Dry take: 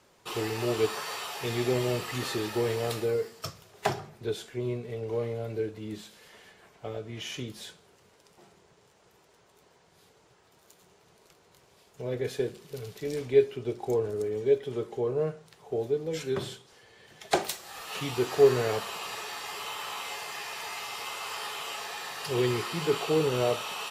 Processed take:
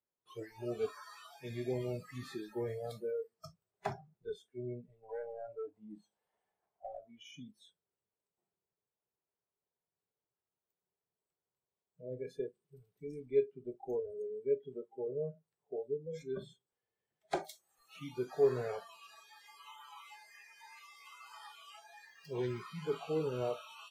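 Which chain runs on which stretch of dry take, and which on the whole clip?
0:05.03–0:07.12: parametric band 790 Hz +12 dB 0.89 octaves + hard clipping −28 dBFS
0:22.06–0:22.61: phase distortion by the signal itself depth 0.12 ms + parametric band 9,900 Hz −4 dB 0.4 octaves
whole clip: noise reduction from a noise print of the clip's start 26 dB; high-shelf EQ 2,400 Hz −10 dB; level −8.5 dB

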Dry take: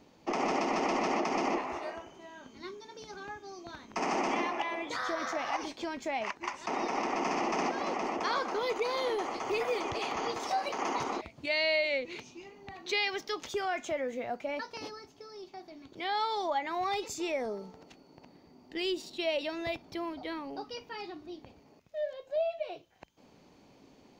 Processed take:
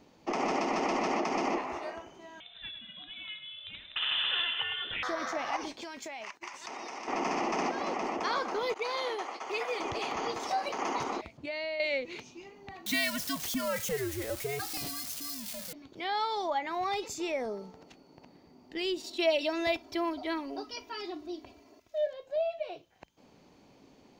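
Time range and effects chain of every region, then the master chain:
0:02.40–0:05.03: repeating echo 105 ms, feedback 41%, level −10 dB + voice inversion scrambler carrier 3,800 Hz
0:05.81–0:07.08: downward expander −45 dBFS + spectral tilt +2.5 dB per octave + downward compressor 12 to 1, threshold −37 dBFS
0:08.74–0:09.80: meter weighting curve A + downward expander −35 dBFS
0:11.37–0:11.80: high-shelf EQ 2,100 Hz −9.5 dB + downward compressor, threshold −32 dBFS
0:12.86–0:15.73: spike at every zero crossing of −29 dBFS + frequency shifter −150 Hz
0:19.04–0:22.07: bass and treble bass −5 dB, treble +3 dB + comb filter 3 ms, depth 99%
whole clip: no processing

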